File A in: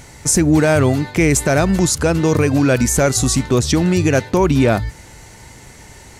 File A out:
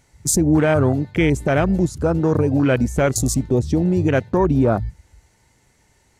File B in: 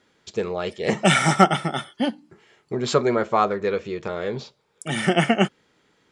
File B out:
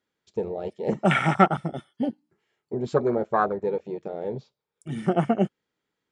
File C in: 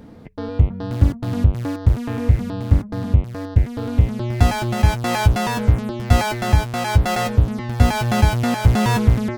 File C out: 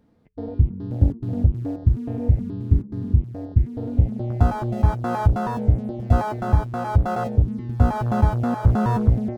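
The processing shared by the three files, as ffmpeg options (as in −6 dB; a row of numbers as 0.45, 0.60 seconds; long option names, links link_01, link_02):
-af "afwtdn=0.0891,volume=-2.5dB"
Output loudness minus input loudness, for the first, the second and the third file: −3.0, −3.5, −3.0 LU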